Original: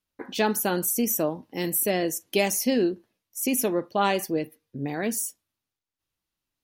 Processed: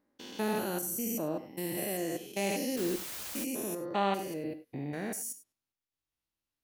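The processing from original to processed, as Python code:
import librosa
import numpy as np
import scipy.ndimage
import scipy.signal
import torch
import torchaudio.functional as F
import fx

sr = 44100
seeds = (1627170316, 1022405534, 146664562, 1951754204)

y = fx.spec_steps(x, sr, hold_ms=200)
y = fx.rev_gated(y, sr, seeds[0], gate_ms=120, shape='flat', drr_db=10.5)
y = fx.quant_dither(y, sr, seeds[1], bits=6, dither='triangular', at=(2.76, 3.43), fade=0.02)
y = y * librosa.db_to_amplitude(-5.0)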